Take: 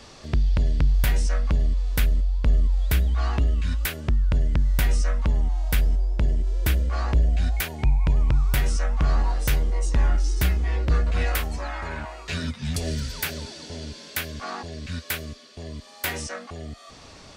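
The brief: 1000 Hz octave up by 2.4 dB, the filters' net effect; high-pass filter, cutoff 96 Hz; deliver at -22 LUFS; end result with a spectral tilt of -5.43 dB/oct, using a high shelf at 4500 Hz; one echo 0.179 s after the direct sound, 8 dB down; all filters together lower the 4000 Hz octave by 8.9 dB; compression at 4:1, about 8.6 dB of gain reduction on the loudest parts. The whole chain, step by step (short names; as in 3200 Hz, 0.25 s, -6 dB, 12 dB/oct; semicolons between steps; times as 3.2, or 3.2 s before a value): HPF 96 Hz; bell 1000 Hz +4 dB; bell 4000 Hz -8 dB; high shelf 4500 Hz -8 dB; compressor 4:1, threshold -33 dBFS; echo 0.179 s -8 dB; gain +15.5 dB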